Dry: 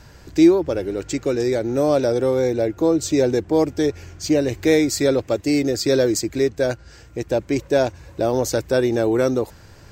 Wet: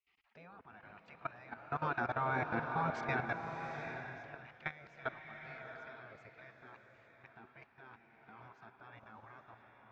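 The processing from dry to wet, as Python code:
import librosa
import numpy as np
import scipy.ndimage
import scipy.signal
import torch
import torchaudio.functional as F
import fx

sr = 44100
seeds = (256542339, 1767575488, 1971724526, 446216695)

y = fx.doppler_pass(x, sr, speed_mps=11, closest_m=8.9, pass_at_s=2.76)
y = fx.cabinet(y, sr, low_hz=310.0, low_slope=12, high_hz=2100.0, hz=(380.0, 550.0, 790.0, 1300.0, 2000.0), db=(-8, 4, -5, 3, -8))
y = fx.spec_gate(y, sr, threshold_db=-20, keep='weak')
y = fx.level_steps(y, sr, step_db=21)
y = fx.rev_bloom(y, sr, seeds[0], attack_ms=800, drr_db=4.5)
y = F.gain(torch.from_numpy(y), 7.5).numpy()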